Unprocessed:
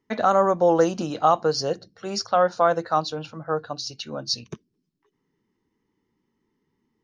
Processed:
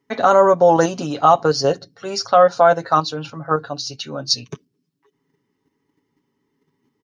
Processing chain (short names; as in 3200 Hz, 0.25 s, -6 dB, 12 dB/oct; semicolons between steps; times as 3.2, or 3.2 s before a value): HPF 88 Hz 6 dB/oct; comb 7.2 ms, depth 56%; in parallel at -1 dB: level quantiser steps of 24 dB; on the sum: gain +2.5 dB